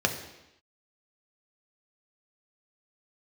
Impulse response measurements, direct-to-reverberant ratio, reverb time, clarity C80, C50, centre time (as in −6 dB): 3.5 dB, 0.90 s, 11.0 dB, 9.0 dB, 18 ms